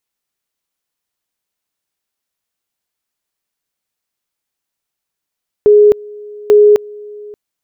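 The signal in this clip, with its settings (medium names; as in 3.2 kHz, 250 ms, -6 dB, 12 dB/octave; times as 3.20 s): two-level tone 417 Hz -3 dBFS, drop 24.5 dB, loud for 0.26 s, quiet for 0.58 s, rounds 2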